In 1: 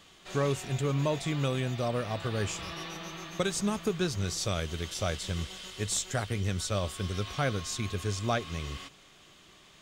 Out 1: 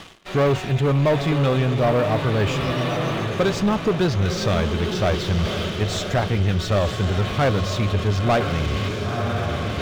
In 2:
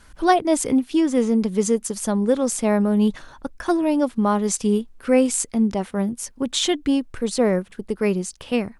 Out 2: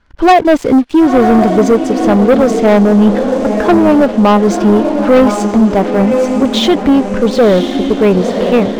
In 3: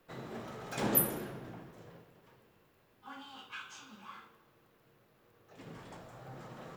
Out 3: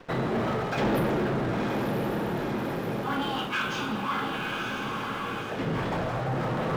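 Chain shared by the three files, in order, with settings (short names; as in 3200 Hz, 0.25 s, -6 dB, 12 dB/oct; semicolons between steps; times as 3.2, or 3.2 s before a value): diffused feedback echo 0.991 s, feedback 44%, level -8 dB; dynamic EQ 700 Hz, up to +5 dB, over -34 dBFS, Q 1; reverse; upward compressor, threshold -29 dBFS; reverse; air absorption 200 m; sample leveller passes 3; gain +1.5 dB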